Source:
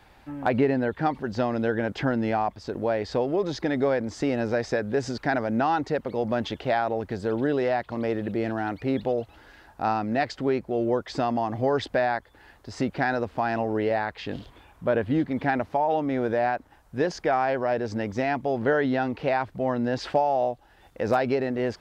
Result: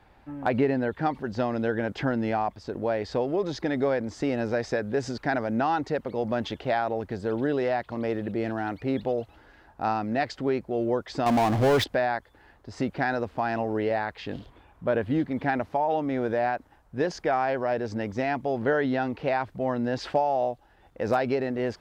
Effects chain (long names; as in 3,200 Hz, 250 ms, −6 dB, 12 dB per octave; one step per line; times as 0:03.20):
0:11.26–0:11.84: power curve on the samples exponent 0.5
one half of a high-frequency compander decoder only
level −1.5 dB